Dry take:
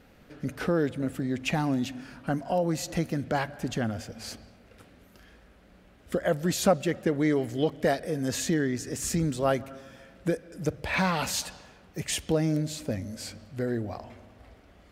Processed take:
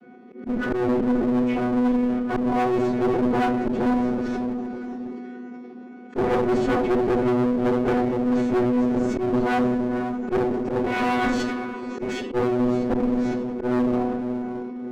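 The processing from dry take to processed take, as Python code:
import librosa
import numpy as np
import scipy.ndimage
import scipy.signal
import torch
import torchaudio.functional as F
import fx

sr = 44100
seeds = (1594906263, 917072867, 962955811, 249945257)

p1 = fx.chord_vocoder(x, sr, chord='bare fifth', root=59)
p2 = fx.lowpass(p1, sr, hz=1500.0, slope=6)
p3 = fx.low_shelf(p2, sr, hz=290.0, db=5.5)
p4 = p3 + fx.echo_diffused(p3, sr, ms=529, feedback_pct=42, wet_db=-15.0, dry=0)
p5 = fx.room_shoebox(p4, sr, seeds[0], volume_m3=32.0, walls='mixed', distance_m=1.3)
p6 = fx.fold_sine(p5, sr, drive_db=4, ceiling_db=-5.0)
p7 = fx.rider(p6, sr, range_db=4, speed_s=0.5)
p8 = fx.auto_swell(p7, sr, attack_ms=101.0)
p9 = fx.clip_asym(p8, sr, top_db=-26.5, bottom_db=-9.0)
p10 = fx.sustainer(p9, sr, db_per_s=24.0)
y = p10 * 10.0 ** (-4.0 / 20.0)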